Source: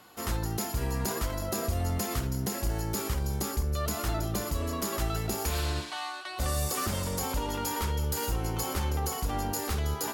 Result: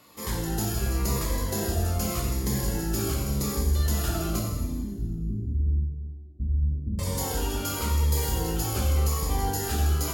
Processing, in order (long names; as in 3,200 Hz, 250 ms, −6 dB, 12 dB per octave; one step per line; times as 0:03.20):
0:04.39–0:06.99: inverse Chebyshev low-pass filter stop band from 890 Hz, stop band 60 dB
dense smooth reverb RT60 1.5 s, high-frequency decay 1×, DRR −2 dB
phaser whose notches keep moving one way falling 0.88 Hz